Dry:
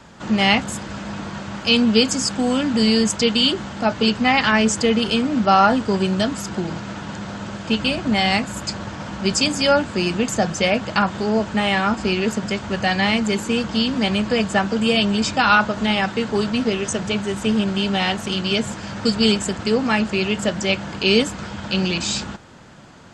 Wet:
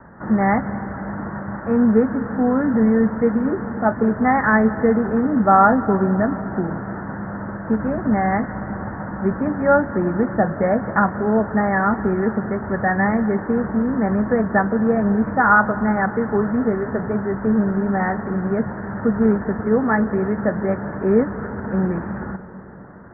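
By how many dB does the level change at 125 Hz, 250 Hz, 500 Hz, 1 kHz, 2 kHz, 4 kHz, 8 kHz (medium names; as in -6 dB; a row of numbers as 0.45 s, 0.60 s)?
+1.5 dB, +1.5 dB, +1.5 dB, +1.5 dB, -1.5 dB, under -40 dB, under -40 dB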